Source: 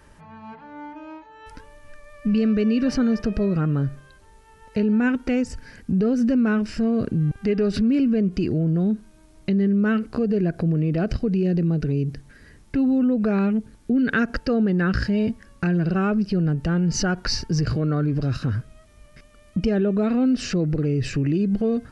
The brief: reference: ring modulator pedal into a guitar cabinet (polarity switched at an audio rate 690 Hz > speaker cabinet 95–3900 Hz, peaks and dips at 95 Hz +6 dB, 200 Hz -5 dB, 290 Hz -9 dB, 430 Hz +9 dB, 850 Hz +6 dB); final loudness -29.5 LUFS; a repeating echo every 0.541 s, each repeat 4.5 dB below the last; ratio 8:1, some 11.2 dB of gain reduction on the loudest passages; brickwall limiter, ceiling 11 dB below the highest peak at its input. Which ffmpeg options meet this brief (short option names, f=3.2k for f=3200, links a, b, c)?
-af "acompressor=threshold=-29dB:ratio=8,alimiter=level_in=3dB:limit=-24dB:level=0:latency=1,volume=-3dB,aecho=1:1:541|1082|1623|2164|2705|3246|3787|4328|4869:0.596|0.357|0.214|0.129|0.0772|0.0463|0.0278|0.0167|0.01,aeval=exprs='val(0)*sgn(sin(2*PI*690*n/s))':c=same,highpass=95,equalizer=f=95:t=q:w=4:g=6,equalizer=f=200:t=q:w=4:g=-5,equalizer=f=290:t=q:w=4:g=-9,equalizer=f=430:t=q:w=4:g=9,equalizer=f=850:t=q:w=4:g=6,lowpass=f=3.9k:w=0.5412,lowpass=f=3.9k:w=1.3066,volume=-0.5dB"